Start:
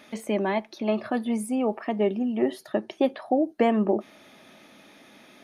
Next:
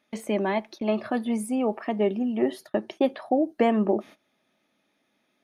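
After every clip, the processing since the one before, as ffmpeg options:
ffmpeg -i in.wav -af "agate=range=-20dB:threshold=-42dB:ratio=16:detection=peak" out.wav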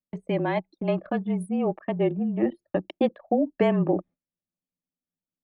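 ffmpeg -i in.wav -af "anlmdn=15.8,afreqshift=-31" out.wav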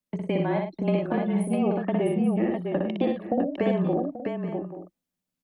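ffmpeg -i in.wav -filter_complex "[0:a]acrossover=split=100|720[link_01][link_02][link_03];[link_01]acompressor=threshold=-57dB:ratio=4[link_04];[link_02]acompressor=threshold=-30dB:ratio=4[link_05];[link_03]acompressor=threshold=-42dB:ratio=4[link_06];[link_04][link_05][link_06]amix=inputs=3:normalize=0,asplit=2[link_07][link_08];[link_08]aecho=0:1:60|104|655|834|879:0.668|0.335|0.562|0.211|0.168[link_09];[link_07][link_09]amix=inputs=2:normalize=0,volume=4.5dB" out.wav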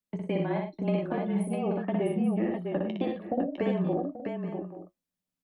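ffmpeg -i in.wav -af "flanger=delay=9.5:depth=2:regen=-56:speed=0.42:shape=triangular" out.wav

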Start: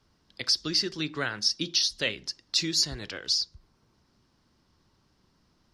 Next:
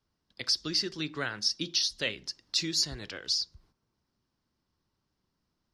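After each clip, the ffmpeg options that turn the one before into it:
ffmpeg -i in.wav -af "agate=range=-10dB:threshold=-60dB:ratio=16:detection=peak,volume=-3dB" out.wav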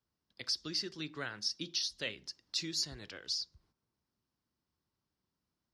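ffmpeg -i in.wav -af "highpass=46,volume=-7dB" out.wav

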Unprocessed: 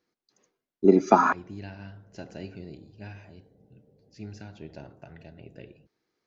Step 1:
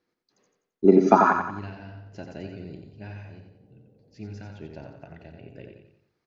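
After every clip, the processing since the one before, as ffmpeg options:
ffmpeg -i in.wav -filter_complex "[0:a]highshelf=frequency=5300:gain=-9.5,asplit=2[link_01][link_02];[link_02]aecho=0:1:89|178|267|356|445:0.501|0.221|0.097|0.0427|0.0188[link_03];[link_01][link_03]amix=inputs=2:normalize=0,volume=1.5dB" out.wav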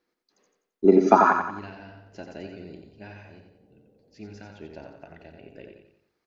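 ffmpeg -i in.wav -af "equalizer=frequency=120:width_type=o:width=1.1:gain=-11,volume=1dB" out.wav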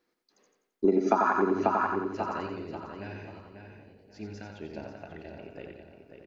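ffmpeg -i in.wav -filter_complex "[0:a]bandreject=frequency=60:width_type=h:width=6,bandreject=frequency=120:width_type=h:width=6,bandreject=frequency=180:width_type=h:width=6,asplit=2[link_01][link_02];[link_02]adelay=540,lowpass=frequency=3600:poles=1,volume=-7dB,asplit=2[link_03][link_04];[link_04]adelay=540,lowpass=frequency=3600:poles=1,volume=0.31,asplit=2[link_05][link_06];[link_06]adelay=540,lowpass=frequency=3600:poles=1,volume=0.31,asplit=2[link_07][link_08];[link_08]adelay=540,lowpass=frequency=3600:poles=1,volume=0.31[link_09];[link_01][link_03][link_05][link_07][link_09]amix=inputs=5:normalize=0,acompressor=threshold=-22dB:ratio=4,volume=1dB" out.wav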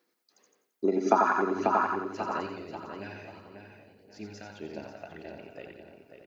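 ffmpeg -i in.wav -af "crystalizer=i=1:c=0,aphaser=in_gain=1:out_gain=1:delay=1.6:decay=0.28:speed=1.7:type=sinusoidal,highpass=frequency=220:poles=1" out.wav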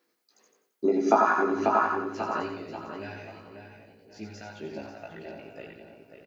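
ffmpeg -i in.wav -filter_complex "[0:a]asplit=2[link_01][link_02];[link_02]adelay=18,volume=-2.5dB[link_03];[link_01][link_03]amix=inputs=2:normalize=0" out.wav

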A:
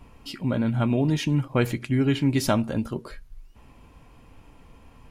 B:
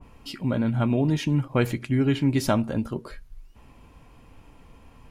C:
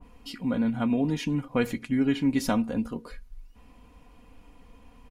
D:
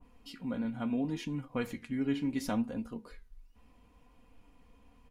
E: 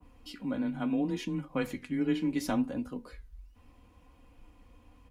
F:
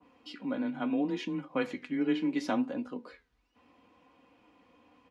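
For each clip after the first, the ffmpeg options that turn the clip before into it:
ffmpeg -i in.wav -af "adynamicequalizer=threshold=0.00708:dfrequency=2000:dqfactor=0.7:tfrequency=2000:tqfactor=0.7:attack=5:release=100:ratio=0.375:range=1.5:mode=cutabove:tftype=highshelf" out.wav
ffmpeg -i in.wav -af "aecho=1:1:4.1:0.61,volume=-4dB" out.wav
ffmpeg -i in.wav -af "flanger=delay=7.6:depth=6.8:regen=76:speed=0.72:shape=sinusoidal,volume=-4dB" out.wav
ffmpeg -i in.wav -af "afreqshift=20,volume=2.5dB" out.wav
ffmpeg -i in.wav -af "highpass=250,lowpass=4500,volume=2dB" out.wav

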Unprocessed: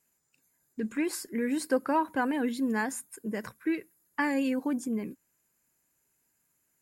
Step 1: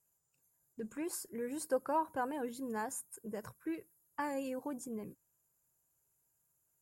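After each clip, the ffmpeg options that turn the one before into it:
ffmpeg -i in.wav -af "equalizer=frequency=125:width_type=o:width=1:gain=4,equalizer=frequency=250:width_type=o:width=1:gain=-12,equalizer=frequency=2000:width_type=o:width=1:gain=-12,equalizer=frequency=4000:width_type=o:width=1:gain=-8,volume=-2.5dB" out.wav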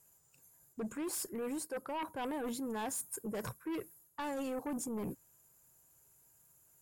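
ffmpeg -i in.wav -af "areverse,acompressor=threshold=-44dB:ratio=10,areverse,aeval=exprs='0.0168*sin(PI/2*2.24*val(0)/0.0168)':channel_layout=same,volume=1dB" out.wav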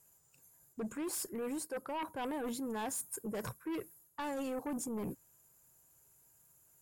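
ffmpeg -i in.wav -af anull out.wav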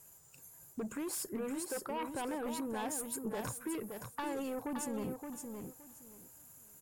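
ffmpeg -i in.wav -filter_complex "[0:a]acompressor=threshold=-47dB:ratio=4,asplit=2[link_01][link_02];[link_02]aecho=0:1:570|1140|1710:0.501|0.1|0.02[link_03];[link_01][link_03]amix=inputs=2:normalize=0,volume=8dB" out.wav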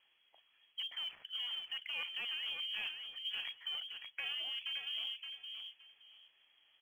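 ffmpeg -i in.wav -af "tremolo=f=170:d=0.333,lowpass=frequency=2900:width_type=q:width=0.5098,lowpass=frequency=2900:width_type=q:width=0.6013,lowpass=frequency=2900:width_type=q:width=0.9,lowpass=frequency=2900:width_type=q:width=2.563,afreqshift=-3400,acrusher=bits=8:mode=log:mix=0:aa=0.000001,volume=-1dB" out.wav

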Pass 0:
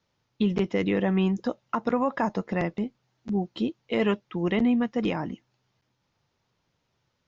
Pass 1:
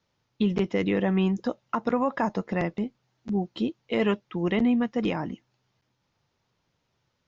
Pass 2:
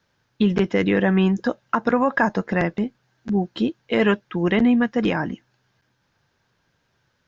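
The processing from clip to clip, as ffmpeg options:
ffmpeg -i in.wav -af anull out.wav
ffmpeg -i in.wav -af "equalizer=frequency=1600:width=6.1:gain=11.5,volume=5.5dB" out.wav

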